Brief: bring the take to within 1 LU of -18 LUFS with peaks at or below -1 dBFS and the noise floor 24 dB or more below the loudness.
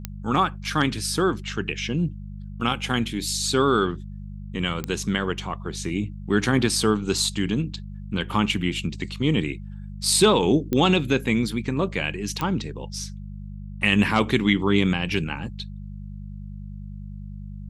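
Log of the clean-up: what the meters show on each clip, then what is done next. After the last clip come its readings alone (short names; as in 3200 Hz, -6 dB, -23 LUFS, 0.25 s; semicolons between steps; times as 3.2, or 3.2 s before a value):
clicks 4; hum 50 Hz; harmonics up to 200 Hz; hum level -34 dBFS; loudness -23.5 LUFS; peak -4.5 dBFS; loudness target -18.0 LUFS
-> de-click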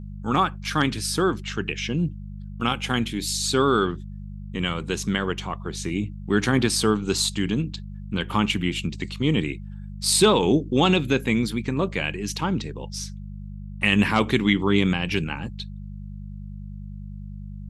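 clicks 0; hum 50 Hz; harmonics up to 200 Hz; hum level -34 dBFS
-> de-hum 50 Hz, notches 4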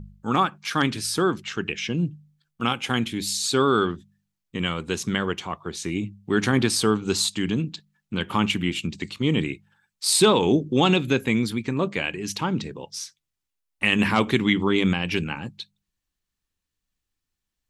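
hum none; loudness -24.0 LUFS; peak -5.0 dBFS; loudness target -18.0 LUFS
-> gain +6 dB; limiter -1 dBFS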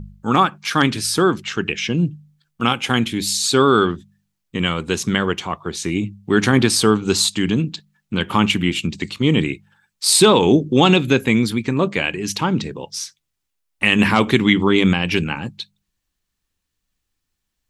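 loudness -18.0 LUFS; peak -1.0 dBFS; noise floor -77 dBFS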